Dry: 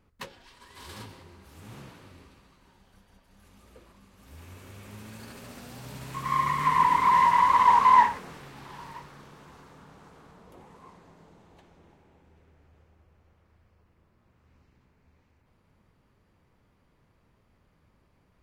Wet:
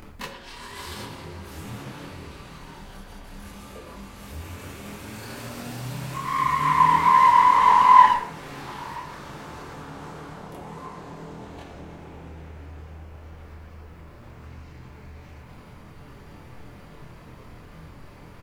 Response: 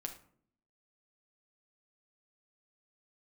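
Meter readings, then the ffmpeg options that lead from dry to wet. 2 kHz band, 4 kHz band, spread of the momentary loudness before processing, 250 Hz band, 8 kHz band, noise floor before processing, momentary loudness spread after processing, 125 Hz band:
+3.5 dB, +5.5 dB, 16 LU, +7.0 dB, can't be measured, −67 dBFS, 24 LU, +7.5 dB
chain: -filter_complex "[0:a]acompressor=mode=upward:threshold=-32dB:ratio=2.5,asplit=2[link_01][link_02];[link_02]adelay=110,highpass=300,lowpass=3400,asoftclip=type=hard:threshold=-16.5dB,volume=-10dB[link_03];[link_01][link_03]amix=inputs=2:normalize=0,asplit=2[link_04][link_05];[1:a]atrim=start_sample=2205,adelay=25[link_06];[link_05][link_06]afir=irnorm=-1:irlink=0,volume=5dB[link_07];[link_04][link_07]amix=inputs=2:normalize=0,volume=-1.5dB"

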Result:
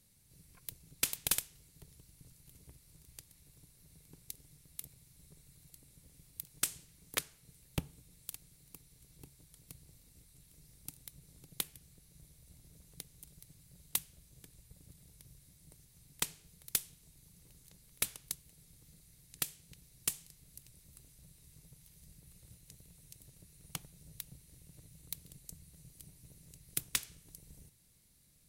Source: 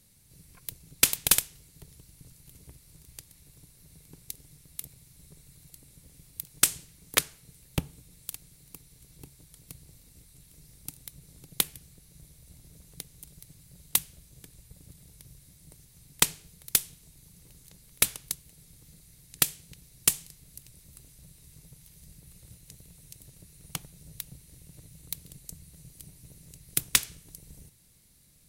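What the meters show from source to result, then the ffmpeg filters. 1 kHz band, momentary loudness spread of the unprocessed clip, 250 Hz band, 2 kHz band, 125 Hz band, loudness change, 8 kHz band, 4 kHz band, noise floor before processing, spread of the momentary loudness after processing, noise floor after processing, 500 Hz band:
−11.0 dB, 21 LU, −8.5 dB, −11.0 dB, −7.5 dB, −11.0 dB, −10.5 dB, −11.0 dB, −58 dBFS, 23 LU, −65 dBFS, −10.0 dB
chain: -af "alimiter=limit=-8dB:level=0:latency=1:release=316,volume=-6.5dB"

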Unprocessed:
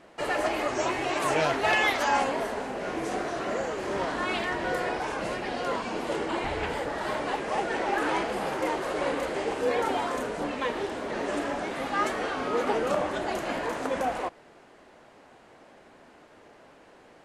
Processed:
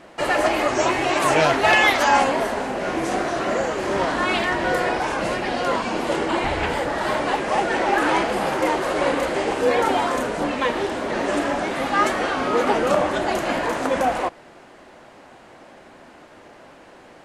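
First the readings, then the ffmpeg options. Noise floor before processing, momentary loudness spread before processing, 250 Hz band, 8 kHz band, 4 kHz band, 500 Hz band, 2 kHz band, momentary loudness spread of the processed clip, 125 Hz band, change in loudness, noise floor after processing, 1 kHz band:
−54 dBFS, 6 LU, +8.0 dB, +8.0 dB, +8.0 dB, +7.5 dB, +8.0 dB, 6 LU, +8.0 dB, +8.0 dB, −47 dBFS, +8.0 dB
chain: -af "bandreject=frequency=440:width=12,volume=8dB"

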